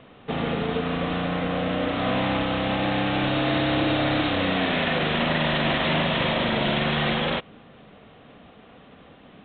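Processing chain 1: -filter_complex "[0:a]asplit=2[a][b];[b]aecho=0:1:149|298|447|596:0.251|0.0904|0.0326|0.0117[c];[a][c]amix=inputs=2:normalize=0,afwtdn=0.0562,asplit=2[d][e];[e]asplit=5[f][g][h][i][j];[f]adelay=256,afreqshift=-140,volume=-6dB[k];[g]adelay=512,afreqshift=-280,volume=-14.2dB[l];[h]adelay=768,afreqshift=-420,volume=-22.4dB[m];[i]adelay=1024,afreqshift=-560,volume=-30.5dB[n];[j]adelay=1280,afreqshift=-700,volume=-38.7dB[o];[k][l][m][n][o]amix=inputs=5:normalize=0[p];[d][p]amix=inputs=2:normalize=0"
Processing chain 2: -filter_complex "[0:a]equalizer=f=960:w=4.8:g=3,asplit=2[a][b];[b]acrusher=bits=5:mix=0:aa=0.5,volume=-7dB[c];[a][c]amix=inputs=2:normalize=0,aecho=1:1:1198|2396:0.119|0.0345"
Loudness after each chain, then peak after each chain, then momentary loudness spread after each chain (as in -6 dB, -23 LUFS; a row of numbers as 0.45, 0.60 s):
-24.0, -20.5 LUFS; -11.0, -7.5 dBFS; 5, 18 LU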